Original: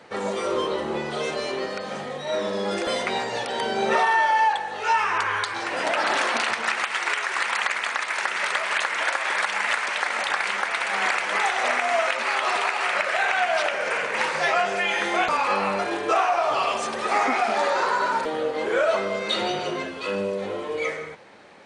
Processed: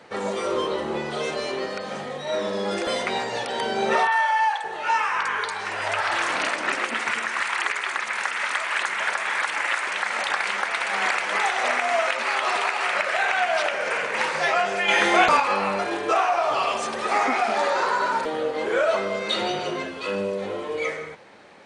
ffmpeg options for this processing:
-filter_complex "[0:a]asettb=1/sr,asplit=3[a][b][c];[a]atrim=end=4.074[d];[b]atrim=start=4.07:end=10.11,asetpts=PTS-STARTPTS,afade=t=in:d=0.004:c=qsin,afade=t=out:st=6.036:d=0.004:c=qsin,acrossover=split=580|4500[e][f][g];[g]adelay=50[h];[e]adelay=570[i];[i][f][h]amix=inputs=3:normalize=0,atrim=end_sample=266364[j];[c]atrim=start=10.106[k];[d][j]acrossfade=d=0.004:c1=hsin:c2=qsin[l];[l][k]acrossfade=d=0.004:c1=qsin:c2=hsin,asettb=1/sr,asplit=3[m][n][o];[m]atrim=end=14.884[p];[n]atrim=start=14.88:end=15.4,asetpts=PTS-STARTPTS,afade=t=in:d=0.004:c=qsin,afade=t=out:st=0.516:d=0.004:c=qsin,acontrast=40[q];[o]atrim=start=15.396[r];[p][q]acrossfade=d=0.004:c1=hsin:c2=qsin[s];[s][r]acrossfade=d=0.004:c1=qsin:c2=hsin"

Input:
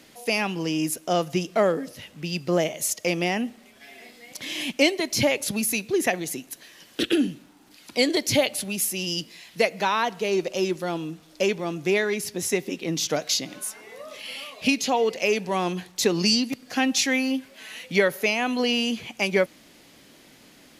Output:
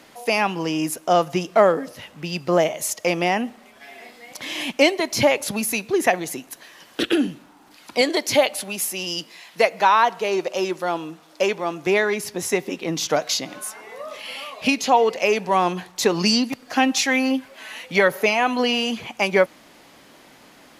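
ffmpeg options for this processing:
-filter_complex "[0:a]asettb=1/sr,asplit=3[a][b][c];[a]atrim=end=8.014[d];[b]atrim=start=8.01:end=11.87,asetpts=PTS-STARTPTS,afade=t=in:d=0.004:c=qsin,afade=t=out:st=3.856:d=0.004:c=qsin,highpass=f=270:p=1[e];[c]atrim=start=11.866[f];[d][e]acrossfade=d=0.004:c1=hsin:c2=qsin[g];[g][f]acrossfade=d=0.004:c1=qsin:c2=hsin,asplit=3[h][i][j];[h]afade=t=out:st=16.09:d=0.02[k];[i]aphaser=in_gain=1:out_gain=1:delay=3.5:decay=0.27:speed=1.1:type=sinusoidal,afade=t=in:st=16.09:d=0.02,afade=t=out:st=19.06:d=0.02[l];[j]afade=t=in:st=19.06:d=0.02[m];[k][l][m]amix=inputs=3:normalize=0,equalizer=f=970:w=0.77:g=9.5"

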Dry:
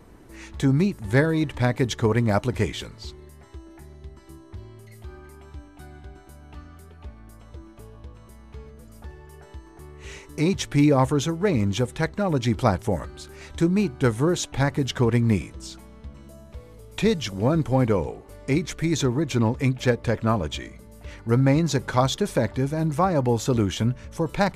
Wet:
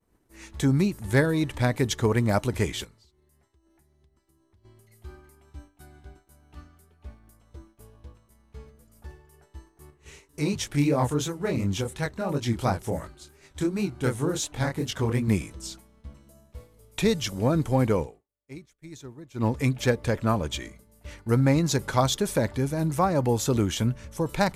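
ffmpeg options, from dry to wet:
-filter_complex "[0:a]asettb=1/sr,asplit=3[a][b][c];[a]atrim=end=2.844[d];[b]atrim=start=2.84:end=4.64,asetpts=PTS-STARTPTS,afade=t=in:d=0.004:c=qsin,afade=t=out:st=1.796:d=0.004:c=qsin,acompressor=threshold=-43dB:ratio=16:attack=3.2:release=140:knee=1:detection=peak[e];[c]atrim=start=4.636[f];[d][e]acrossfade=d=0.004:c1=hsin:c2=qsin[g];[g][f]acrossfade=d=0.004:c1=qsin:c2=hsin,asettb=1/sr,asplit=3[h][i][j];[h]atrim=end=9.904[k];[i]atrim=start=9.9:end=15.28,asetpts=PTS-STARTPTS,afade=t=in:d=0.004:c=qsin,afade=t=out:st=5.376:d=0.004:c=qsin,flanger=delay=20:depth=7.4:speed=2.8[l];[j]atrim=start=15.276[m];[k][l]acrossfade=d=0.004:c1=hsin:c2=qsin[n];[n][m]acrossfade=d=0.004:c1=qsin:c2=hsin,asplit=3[o][p][q];[o]atrim=end=18.48,asetpts=PTS-STARTPTS,afade=t=out:st=18.02:d=0.46:c=exp:silence=0.141254[r];[p]atrim=start=18.48:end=18.98,asetpts=PTS-STARTPTS,volume=-17dB[s];[q]atrim=start=18.98,asetpts=PTS-STARTPTS,afade=t=in:d=0.46:c=exp:silence=0.141254[t];[r][s][t]concat=n=3:v=0:a=1,agate=range=-33dB:threshold=-37dB:ratio=3:detection=peak,highshelf=f=7.5k:g=11,volume=-2dB"

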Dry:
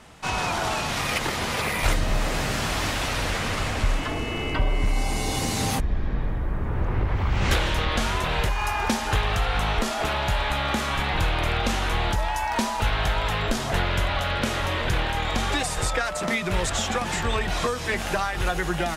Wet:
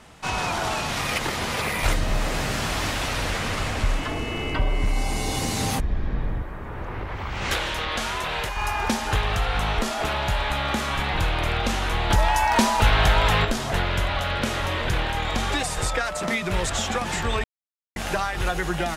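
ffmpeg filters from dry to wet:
-filter_complex "[0:a]asettb=1/sr,asplit=3[a][b][c];[a]atrim=end=6.424[d];[b]atrim=start=6.42:end=8.57,asetpts=PTS-STARTPTS,afade=t=in:d=0.004:c=qsin,afade=t=out:st=2.146:d=0.004:c=qsin,lowshelf=f=310:g=-10[e];[c]atrim=start=8.566[f];[d][e]acrossfade=d=0.004:c1=hsin:c2=qsin[g];[g][f]acrossfade=d=0.004:c1=qsin:c2=hsin,asettb=1/sr,asplit=3[h][i][j];[h]atrim=end=12.104[k];[i]atrim=start=12.1:end=13.45,asetpts=PTS-STARTPTS,afade=t=in:d=0.004:c=qsin,afade=t=out:st=1.346:d=0.004:c=qsin,acontrast=50[l];[j]atrim=start=13.446[m];[k][l]acrossfade=d=0.004:c1=hsin:c2=qsin[n];[n][m]acrossfade=d=0.004:c1=qsin:c2=hsin,asplit=3[o][p][q];[o]atrim=end=17.44,asetpts=PTS-STARTPTS,afade=t=out:st=17.436:d=0.004:c=hsin[r];[p]atrim=start=17.44:end=17.96,asetpts=PTS-STARTPTS,volume=0[s];[q]atrim=start=17.96,asetpts=PTS-STARTPTS,afade=t=in:d=0.004:c=hsin[t];[r][s][t]concat=n=3:v=0:a=1"

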